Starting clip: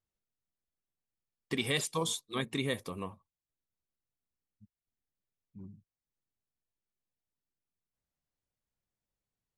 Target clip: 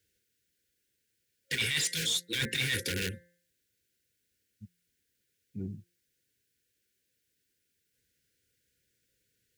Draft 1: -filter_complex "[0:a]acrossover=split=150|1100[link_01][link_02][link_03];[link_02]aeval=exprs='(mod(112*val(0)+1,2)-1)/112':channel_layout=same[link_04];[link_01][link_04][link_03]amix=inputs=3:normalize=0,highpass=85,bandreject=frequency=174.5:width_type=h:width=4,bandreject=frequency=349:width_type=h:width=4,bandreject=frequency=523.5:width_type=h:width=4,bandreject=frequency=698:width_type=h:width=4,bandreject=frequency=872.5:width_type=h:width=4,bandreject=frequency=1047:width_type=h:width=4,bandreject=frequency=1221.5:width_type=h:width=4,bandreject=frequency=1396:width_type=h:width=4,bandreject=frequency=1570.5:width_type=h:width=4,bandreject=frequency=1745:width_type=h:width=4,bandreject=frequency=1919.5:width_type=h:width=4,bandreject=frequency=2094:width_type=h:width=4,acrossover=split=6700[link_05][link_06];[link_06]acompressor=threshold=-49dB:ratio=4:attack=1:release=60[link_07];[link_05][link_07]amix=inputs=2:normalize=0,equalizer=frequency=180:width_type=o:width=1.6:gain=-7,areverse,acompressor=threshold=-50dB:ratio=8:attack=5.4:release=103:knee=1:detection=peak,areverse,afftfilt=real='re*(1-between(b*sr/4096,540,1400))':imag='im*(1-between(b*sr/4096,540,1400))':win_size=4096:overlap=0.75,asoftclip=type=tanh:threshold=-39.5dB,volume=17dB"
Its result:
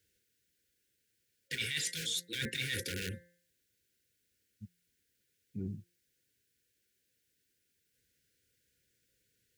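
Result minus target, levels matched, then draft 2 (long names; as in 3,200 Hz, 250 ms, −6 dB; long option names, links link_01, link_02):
downward compressor: peak gain reduction +7.5 dB
-filter_complex "[0:a]acrossover=split=150|1100[link_01][link_02][link_03];[link_02]aeval=exprs='(mod(112*val(0)+1,2)-1)/112':channel_layout=same[link_04];[link_01][link_04][link_03]amix=inputs=3:normalize=0,highpass=85,bandreject=frequency=174.5:width_type=h:width=4,bandreject=frequency=349:width_type=h:width=4,bandreject=frequency=523.5:width_type=h:width=4,bandreject=frequency=698:width_type=h:width=4,bandreject=frequency=872.5:width_type=h:width=4,bandreject=frequency=1047:width_type=h:width=4,bandreject=frequency=1221.5:width_type=h:width=4,bandreject=frequency=1396:width_type=h:width=4,bandreject=frequency=1570.5:width_type=h:width=4,bandreject=frequency=1745:width_type=h:width=4,bandreject=frequency=1919.5:width_type=h:width=4,bandreject=frequency=2094:width_type=h:width=4,acrossover=split=6700[link_05][link_06];[link_06]acompressor=threshold=-49dB:ratio=4:attack=1:release=60[link_07];[link_05][link_07]amix=inputs=2:normalize=0,equalizer=frequency=180:width_type=o:width=1.6:gain=-7,areverse,acompressor=threshold=-41.5dB:ratio=8:attack=5.4:release=103:knee=1:detection=peak,areverse,afftfilt=real='re*(1-between(b*sr/4096,540,1400))':imag='im*(1-between(b*sr/4096,540,1400))':win_size=4096:overlap=0.75,asoftclip=type=tanh:threshold=-39.5dB,volume=17dB"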